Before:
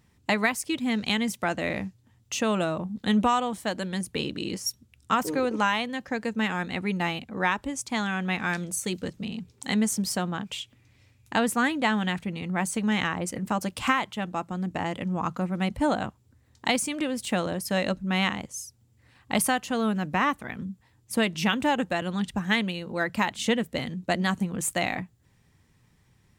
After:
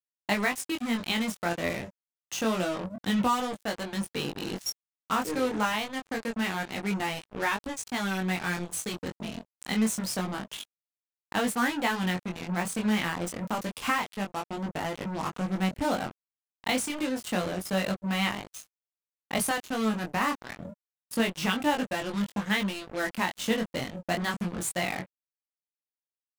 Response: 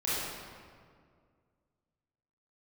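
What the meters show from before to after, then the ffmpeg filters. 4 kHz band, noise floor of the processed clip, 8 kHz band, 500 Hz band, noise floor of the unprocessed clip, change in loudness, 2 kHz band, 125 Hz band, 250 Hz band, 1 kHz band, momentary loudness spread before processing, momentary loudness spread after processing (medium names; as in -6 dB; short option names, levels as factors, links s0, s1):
-2.0 dB, under -85 dBFS, -2.5 dB, -2.5 dB, -63 dBFS, -2.5 dB, -2.5 dB, -3.0 dB, -2.5 dB, -3.0 dB, 8 LU, 8 LU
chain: -af "acrusher=bits=4:mix=0:aa=0.5,flanger=delay=19.5:depth=4:speed=0.27"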